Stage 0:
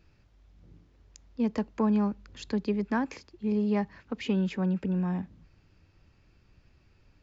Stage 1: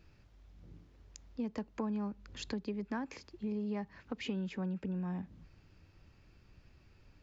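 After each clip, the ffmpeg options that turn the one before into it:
-af "acompressor=threshold=-38dB:ratio=3"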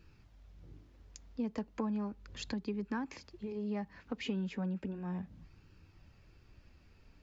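-af "flanger=delay=0.7:depth=3.8:regen=-58:speed=0.35:shape=sinusoidal,volume=4.5dB"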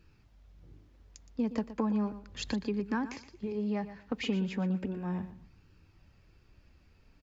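-af "agate=range=-6dB:threshold=-48dB:ratio=16:detection=peak,aecho=1:1:119|238|357:0.211|0.0465|0.0102,volume=5dB"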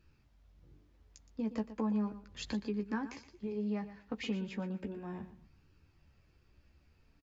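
-filter_complex "[0:a]asplit=2[a][b];[b]adelay=14,volume=-7dB[c];[a][c]amix=inputs=2:normalize=0,volume=-5.5dB"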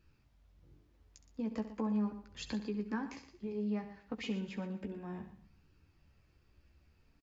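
-af "aecho=1:1:67|134|201|268:0.224|0.0873|0.0341|0.0133,volume=-1.5dB"

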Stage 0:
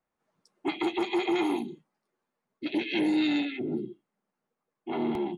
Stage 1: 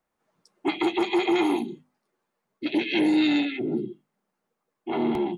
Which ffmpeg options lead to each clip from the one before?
-af "bandreject=f=50:t=h:w=6,bandreject=f=100:t=h:w=6,bandreject=f=150:t=h:w=6,bandreject=f=200:t=h:w=6,bandreject=f=250:t=h:w=6,volume=4.5dB"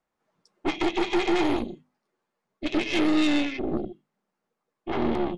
-af "aeval=exprs='0.224*(cos(1*acos(clip(val(0)/0.224,-1,1)))-cos(1*PI/2))+0.0355*(cos(6*acos(clip(val(0)/0.224,-1,1)))-cos(6*PI/2))':c=same,lowpass=7.4k,volume=-1.5dB"

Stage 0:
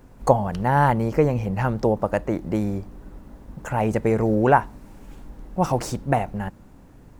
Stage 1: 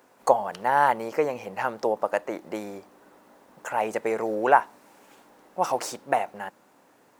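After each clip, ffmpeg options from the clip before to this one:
-af "highpass=520"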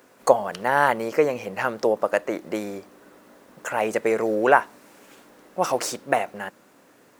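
-af "equalizer=f=850:w=2.5:g=-7.5,volume=5.5dB"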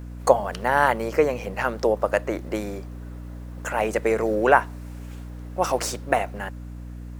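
-af "aeval=exprs='val(0)+0.0178*(sin(2*PI*60*n/s)+sin(2*PI*2*60*n/s)/2+sin(2*PI*3*60*n/s)/3+sin(2*PI*4*60*n/s)/4+sin(2*PI*5*60*n/s)/5)':c=same"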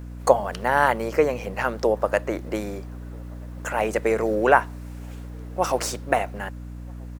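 -filter_complex "[0:a]asplit=2[a][b];[b]adelay=1283,volume=-30dB,highshelf=f=4k:g=-28.9[c];[a][c]amix=inputs=2:normalize=0"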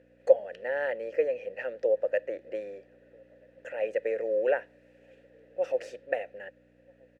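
-filter_complex "[0:a]asplit=3[a][b][c];[a]bandpass=f=530:t=q:w=8,volume=0dB[d];[b]bandpass=f=1.84k:t=q:w=8,volume=-6dB[e];[c]bandpass=f=2.48k:t=q:w=8,volume=-9dB[f];[d][e][f]amix=inputs=3:normalize=0"

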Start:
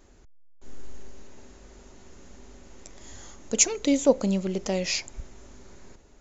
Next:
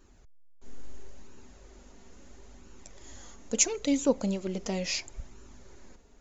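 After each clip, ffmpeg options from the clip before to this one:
-af "flanger=delay=0.7:depth=3.7:regen=-35:speed=0.74:shape=sinusoidal"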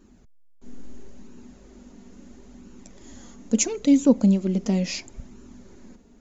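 -af "equalizer=f=220:t=o:w=1.2:g=14"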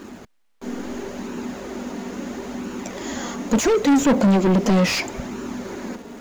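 -filter_complex "[0:a]asplit=2[a][b];[b]highpass=f=720:p=1,volume=36dB,asoftclip=type=tanh:threshold=-4.5dB[c];[a][c]amix=inputs=2:normalize=0,lowpass=f=1.8k:p=1,volume=-6dB,asplit=2[d][e];[e]acrusher=bits=5:mix=0:aa=0.000001,volume=-10dB[f];[d][f]amix=inputs=2:normalize=0,volume=-6dB"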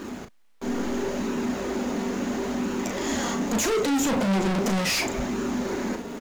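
-filter_complex "[0:a]asoftclip=type=hard:threshold=-26dB,asplit=2[a][b];[b]adelay=36,volume=-7.5dB[c];[a][c]amix=inputs=2:normalize=0,volume=2.5dB"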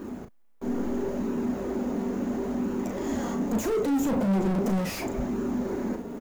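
-af "equalizer=f=4k:w=0.33:g=-14"

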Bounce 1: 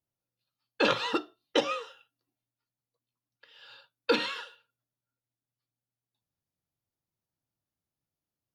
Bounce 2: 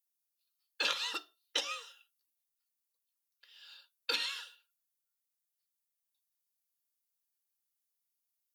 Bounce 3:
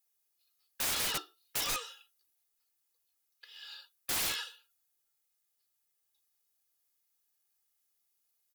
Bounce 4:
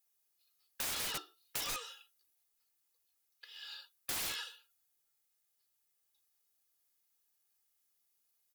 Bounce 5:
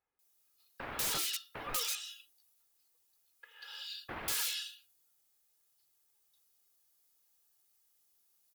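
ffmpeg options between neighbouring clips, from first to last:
-af "aderivative,volume=5dB"
-af "aecho=1:1:2.4:0.87,aeval=exprs='(mod(37.6*val(0)+1,2)-1)/37.6':c=same,volume=4.5dB"
-af "acompressor=threshold=-38dB:ratio=2.5"
-filter_complex "[0:a]asoftclip=type=tanh:threshold=-32.5dB,acrossover=split=2100[a][b];[b]adelay=190[c];[a][c]amix=inputs=2:normalize=0,volume=5.5dB"

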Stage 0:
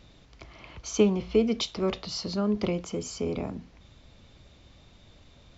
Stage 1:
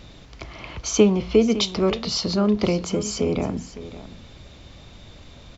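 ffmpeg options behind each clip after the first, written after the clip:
-filter_complex "[0:a]asplit=2[a][b];[b]acompressor=threshold=-33dB:ratio=6,volume=-1dB[c];[a][c]amix=inputs=2:normalize=0,aecho=1:1:558:0.178,volume=4.5dB"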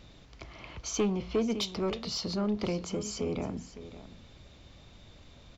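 -af "asoftclip=type=tanh:threshold=-12.5dB,volume=-9dB"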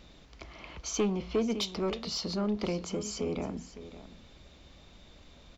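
-af "equalizer=f=110:t=o:w=0.37:g=-13"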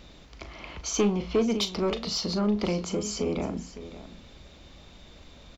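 -filter_complex "[0:a]asplit=2[a][b];[b]adelay=39,volume=-11.5dB[c];[a][c]amix=inputs=2:normalize=0,volume=4.5dB"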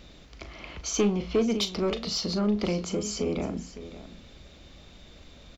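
-af "equalizer=f=940:w=2.7:g=-4"

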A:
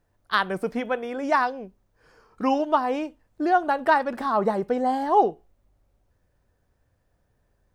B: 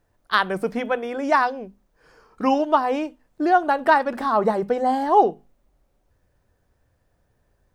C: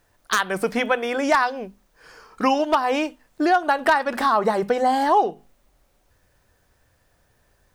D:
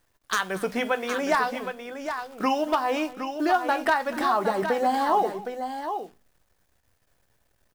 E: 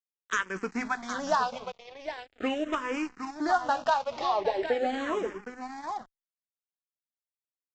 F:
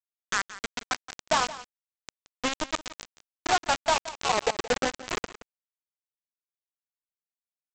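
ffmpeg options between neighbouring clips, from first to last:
-af "bandreject=f=50:t=h:w=6,bandreject=f=100:t=h:w=6,bandreject=f=150:t=h:w=6,bandreject=f=200:t=h:w=6,bandreject=f=250:t=h:w=6,volume=3dB"
-af "tiltshelf=f=970:g=-5,acompressor=threshold=-23dB:ratio=3,aeval=exprs='0.178*(abs(mod(val(0)/0.178+3,4)-2)-1)':c=same,volume=6.5dB"
-filter_complex "[0:a]acrusher=bits=8:dc=4:mix=0:aa=0.000001,asplit=2[a][b];[b]adelay=16,volume=-12dB[c];[a][c]amix=inputs=2:normalize=0,aecho=1:1:46|234|764:0.1|0.106|0.398,volume=-5dB"
-filter_complex "[0:a]aresample=16000,aeval=exprs='sgn(val(0))*max(abs(val(0))-0.0126,0)':c=same,aresample=44100,asplit=2[a][b];[b]afreqshift=-0.41[c];[a][c]amix=inputs=2:normalize=1"
-af "aresample=16000,acrusher=bits=3:mix=0:aa=0.000001,aresample=44100,aecho=1:1:173:0.158"

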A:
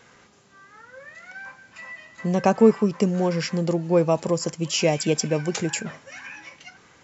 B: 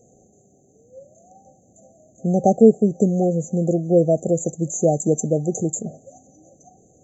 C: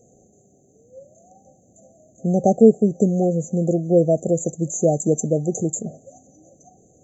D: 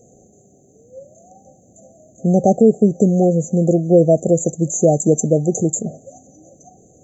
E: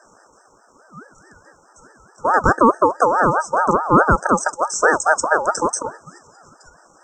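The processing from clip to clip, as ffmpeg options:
-af "afftfilt=real='re*(1-between(b*sr/4096,780,6000))':imag='im*(1-between(b*sr/4096,780,6000))':win_size=4096:overlap=0.75,volume=3.5dB"
-af "bandreject=f=800:w=12"
-af "alimiter=level_in=6dB:limit=-1dB:release=50:level=0:latency=1,volume=-1dB"
-af "aeval=exprs='val(0)*sin(2*PI*890*n/s+890*0.25/4.7*sin(2*PI*4.7*n/s))':c=same,volume=1dB"

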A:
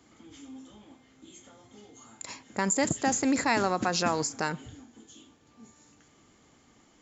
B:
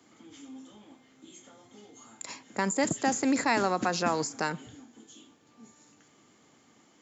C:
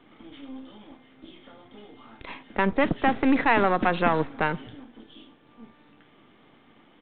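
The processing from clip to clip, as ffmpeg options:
-filter_complex "[0:a]highpass=140,acrossover=split=200|2000[a][b][c];[c]alimiter=limit=-23.5dB:level=0:latency=1:release=129[d];[a][b][d]amix=inputs=3:normalize=0"
-af "aeval=exprs='if(lt(val(0),0),0.447*val(0),val(0))':c=same,aresample=8000,aresample=44100,volume=8dB"

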